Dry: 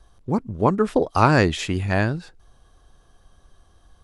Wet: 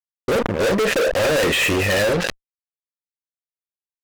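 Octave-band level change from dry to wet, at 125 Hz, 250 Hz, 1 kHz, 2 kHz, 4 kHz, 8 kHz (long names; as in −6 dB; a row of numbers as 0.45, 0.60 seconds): −5.0, −2.0, −4.0, +6.5, +9.5, +11.0 decibels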